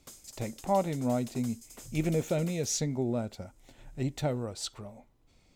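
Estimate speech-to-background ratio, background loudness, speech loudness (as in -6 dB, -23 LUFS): 15.5 dB, -48.0 LUFS, -32.5 LUFS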